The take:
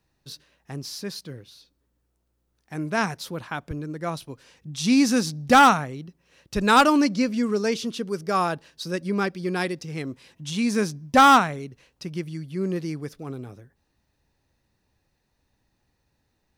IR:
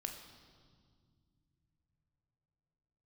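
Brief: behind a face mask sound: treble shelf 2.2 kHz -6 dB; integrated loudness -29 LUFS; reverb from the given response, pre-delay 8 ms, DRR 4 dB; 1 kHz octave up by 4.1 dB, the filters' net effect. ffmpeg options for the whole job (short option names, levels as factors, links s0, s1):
-filter_complex "[0:a]equalizer=f=1000:t=o:g=7,asplit=2[s0][s1];[1:a]atrim=start_sample=2205,adelay=8[s2];[s1][s2]afir=irnorm=-1:irlink=0,volume=0.75[s3];[s0][s3]amix=inputs=2:normalize=0,highshelf=f=2200:g=-6,volume=0.299"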